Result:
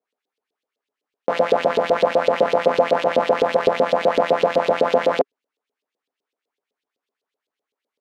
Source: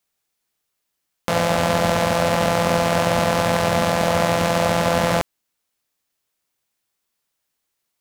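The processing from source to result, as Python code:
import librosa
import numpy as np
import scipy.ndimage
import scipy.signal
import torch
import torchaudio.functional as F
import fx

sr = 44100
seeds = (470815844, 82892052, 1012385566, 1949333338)

y = fx.filter_lfo_bandpass(x, sr, shape='saw_up', hz=7.9, low_hz=440.0, high_hz=4000.0, q=2.8)
y = fx.small_body(y, sr, hz=(270.0, 410.0), ring_ms=30, db=15)
y = y * librosa.db_to_amplitude(2.5)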